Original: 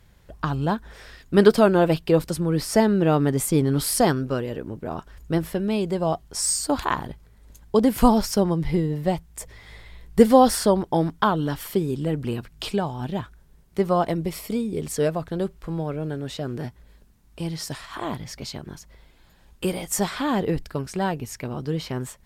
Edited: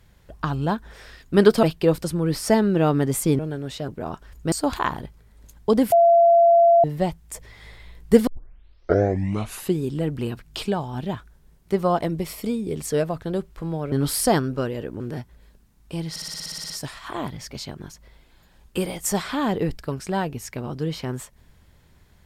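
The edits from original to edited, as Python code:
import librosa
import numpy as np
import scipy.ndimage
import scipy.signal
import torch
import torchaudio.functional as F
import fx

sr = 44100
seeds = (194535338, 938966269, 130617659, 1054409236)

y = fx.edit(x, sr, fx.cut(start_s=1.63, length_s=0.26),
    fx.swap(start_s=3.65, length_s=1.08, other_s=15.98, other_length_s=0.49),
    fx.cut(start_s=5.37, length_s=1.21),
    fx.bleep(start_s=7.98, length_s=0.92, hz=681.0, db=-11.0),
    fx.tape_start(start_s=10.33, length_s=1.53),
    fx.stutter(start_s=17.57, slice_s=0.06, count=11), tone=tone)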